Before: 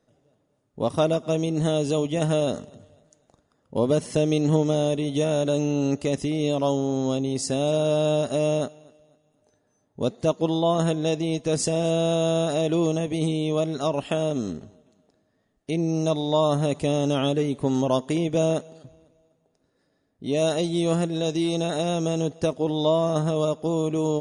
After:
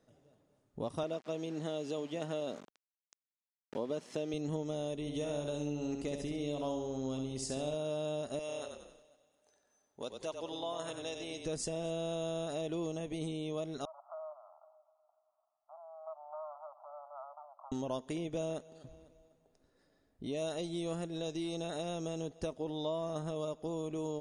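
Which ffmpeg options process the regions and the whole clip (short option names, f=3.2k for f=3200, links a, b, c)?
-filter_complex "[0:a]asettb=1/sr,asplit=3[a][b][c];[a]atrim=end=1.034[d];[b]atrim=start=1.03:end=4.34,asetpts=PTS-STARTPTS,afade=t=in:d=0.004:c=qsin,afade=t=out:st=3.306:d=0.004:c=qsin,aeval=exprs='val(0)*gte(abs(val(0)),0.0126)':c=same,highpass=200,lowpass=6.2k[e];[c]atrim=start=4.336[f];[d][e]acrossfade=d=0.004:c1=hsin:c2=qsin[g];[g][f]acrossfade=d=0.004:c1=qsin:c2=hsin,asettb=1/sr,asplit=3[h][i][j];[h]atrim=end=5.004[k];[i]atrim=start=5:end=7.74,asetpts=PTS-STARTPTS,afade=t=in:d=0.004:c=qsin,afade=t=out:st=2.736:d=0.004:c=qsin,aeval=exprs='val(0)+0.00355*(sin(2*PI*50*n/s)+sin(2*PI*2*50*n/s)/2+sin(2*PI*3*50*n/s)/3+sin(2*PI*4*50*n/s)/4+sin(2*PI*5*50*n/s)/5)':c=same,aecho=1:1:68|136|204|272|340:0.501|0.216|0.0927|0.0398|0.0171,atrim=end_sample=120834[l];[j]atrim=start=7.736[m];[k][l]acrossfade=d=0.004:c1=hsin:c2=qsin[n];[n][m]acrossfade=d=0.004:c1=qsin:c2=hsin,asettb=1/sr,asplit=3[o][p][q];[o]atrim=end=8.394[r];[p]atrim=start=8.39:end=11.46,asetpts=PTS-STARTPTS,afade=t=in:d=0.004:c=qsin,afade=t=out:st=3.066:d=0.004:c=qsin,highpass=f=1k:p=1,asplit=5[s][t][u][v][w];[t]adelay=93,afreqshift=-33,volume=-7dB[x];[u]adelay=186,afreqshift=-66,volume=-16.1dB[y];[v]adelay=279,afreqshift=-99,volume=-25.2dB[z];[w]adelay=372,afreqshift=-132,volume=-34.4dB[aa];[s][x][y][z][aa]amix=inputs=5:normalize=0,atrim=end_sample=135387[ab];[q]atrim=start=11.456[ac];[r][ab]acrossfade=d=0.004:c1=hsin:c2=qsin[ad];[ad][ac]acrossfade=d=0.004:c1=qsin:c2=hsin,asettb=1/sr,asplit=3[ae][af][ag];[ae]atrim=end=13.854[ah];[af]atrim=start=13.85:end=17.72,asetpts=PTS-STARTPTS,afade=t=in:d=0.004:c=qsin,afade=t=out:st=3.866:d=0.004:c=qsin,acompressor=threshold=-39dB:ratio=2:attack=3.2:release=140:knee=1:detection=peak,aeval=exprs='clip(val(0),-1,0.0178)':c=same,asuperpass=centerf=910:order=20:qfactor=1.2[ai];[ag]atrim=start=17.716[aj];[ah][ai]acrossfade=d=0.004:c1=hsin:c2=qsin[ak];[ak][aj]acrossfade=d=0.004:c1=qsin:c2=hsin,asubboost=boost=4.5:cutoff=53,acompressor=threshold=-42dB:ratio=2,volume=-2dB"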